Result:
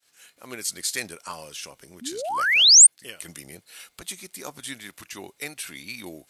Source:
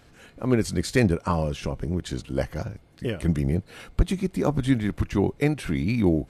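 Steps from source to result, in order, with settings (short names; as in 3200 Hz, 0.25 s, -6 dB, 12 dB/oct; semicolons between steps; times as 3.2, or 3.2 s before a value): expander -49 dBFS; painted sound rise, 2.01–2.87, 220–9300 Hz -17 dBFS; differentiator; gain +8 dB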